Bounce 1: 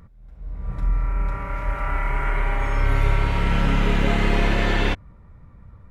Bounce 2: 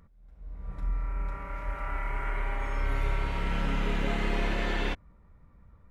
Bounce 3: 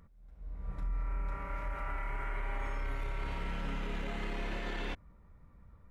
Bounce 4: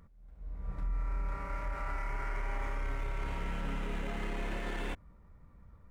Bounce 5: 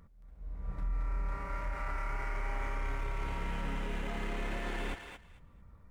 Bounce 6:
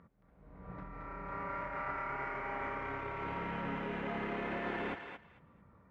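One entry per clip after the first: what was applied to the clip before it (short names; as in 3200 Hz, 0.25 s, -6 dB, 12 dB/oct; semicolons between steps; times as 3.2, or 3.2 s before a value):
bell 110 Hz -6.5 dB 0.82 oct; gain -8.5 dB
limiter -27 dBFS, peak gain reduction 10.5 dB; gain -1.5 dB
median filter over 9 samples; gain +1 dB
thinning echo 0.223 s, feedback 19%, high-pass 840 Hz, level -5 dB
BPF 150–2200 Hz; gain +3 dB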